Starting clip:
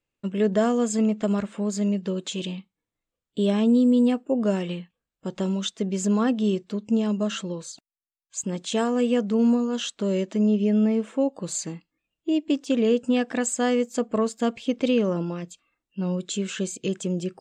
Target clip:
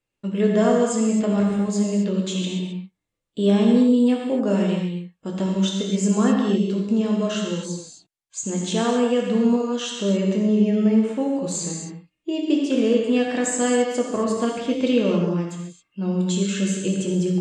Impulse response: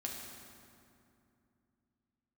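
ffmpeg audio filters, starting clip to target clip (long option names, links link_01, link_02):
-filter_complex "[1:a]atrim=start_sample=2205,atrim=end_sample=6174,asetrate=22050,aresample=44100[link_01];[0:a][link_01]afir=irnorm=-1:irlink=0"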